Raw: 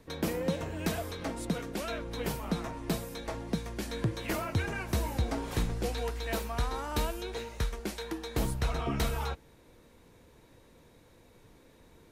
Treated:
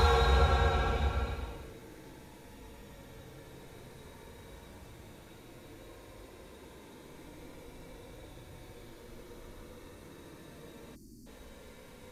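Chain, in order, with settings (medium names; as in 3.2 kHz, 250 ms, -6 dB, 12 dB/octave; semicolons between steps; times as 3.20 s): Paulstretch 19×, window 0.10 s, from 9.29 s; time-frequency box 10.95–11.27 s, 400–4200 Hz -29 dB; trim +8 dB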